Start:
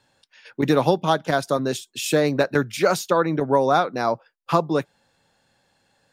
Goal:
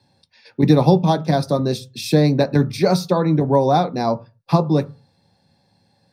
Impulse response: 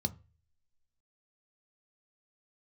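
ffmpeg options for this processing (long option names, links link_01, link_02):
-filter_complex "[1:a]atrim=start_sample=2205,afade=type=out:start_time=0.3:duration=0.01,atrim=end_sample=13671[link_01];[0:a][link_01]afir=irnorm=-1:irlink=0,volume=-3dB"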